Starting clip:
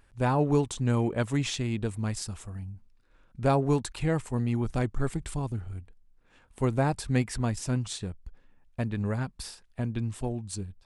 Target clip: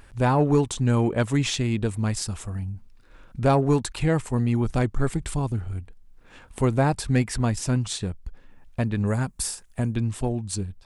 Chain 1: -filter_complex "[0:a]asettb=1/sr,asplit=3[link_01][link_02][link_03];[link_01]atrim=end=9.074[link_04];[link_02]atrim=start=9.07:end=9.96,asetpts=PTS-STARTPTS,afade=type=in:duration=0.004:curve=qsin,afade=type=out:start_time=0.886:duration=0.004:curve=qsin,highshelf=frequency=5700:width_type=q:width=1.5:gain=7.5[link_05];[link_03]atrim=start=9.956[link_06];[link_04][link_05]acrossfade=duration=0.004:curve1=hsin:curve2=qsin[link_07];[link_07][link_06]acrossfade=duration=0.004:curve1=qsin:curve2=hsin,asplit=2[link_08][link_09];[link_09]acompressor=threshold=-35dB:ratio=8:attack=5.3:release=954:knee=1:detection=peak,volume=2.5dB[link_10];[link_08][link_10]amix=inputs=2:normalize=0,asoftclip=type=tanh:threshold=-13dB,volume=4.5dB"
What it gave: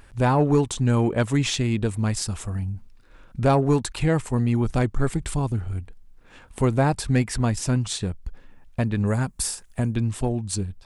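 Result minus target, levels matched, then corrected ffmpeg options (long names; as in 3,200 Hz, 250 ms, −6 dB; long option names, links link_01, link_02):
downward compressor: peak gain reduction −7 dB
-filter_complex "[0:a]asettb=1/sr,asplit=3[link_01][link_02][link_03];[link_01]atrim=end=9.074[link_04];[link_02]atrim=start=9.07:end=9.96,asetpts=PTS-STARTPTS,afade=type=in:duration=0.004:curve=qsin,afade=type=out:start_time=0.886:duration=0.004:curve=qsin,highshelf=frequency=5700:width_type=q:width=1.5:gain=7.5[link_05];[link_03]atrim=start=9.956[link_06];[link_04][link_05]acrossfade=duration=0.004:curve1=hsin:curve2=qsin[link_07];[link_07][link_06]acrossfade=duration=0.004:curve1=qsin:curve2=hsin,asplit=2[link_08][link_09];[link_09]acompressor=threshold=-43dB:ratio=8:attack=5.3:release=954:knee=1:detection=peak,volume=2.5dB[link_10];[link_08][link_10]amix=inputs=2:normalize=0,asoftclip=type=tanh:threshold=-13dB,volume=4.5dB"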